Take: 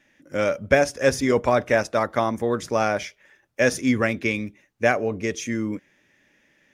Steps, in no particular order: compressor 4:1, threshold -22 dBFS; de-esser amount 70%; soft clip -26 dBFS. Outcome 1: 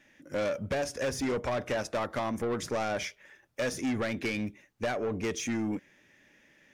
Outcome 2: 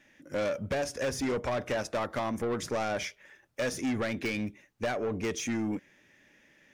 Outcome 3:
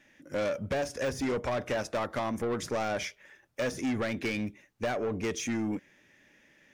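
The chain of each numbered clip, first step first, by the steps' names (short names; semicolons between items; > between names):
compressor > de-esser > soft clip; compressor > soft clip > de-esser; de-esser > compressor > soft clip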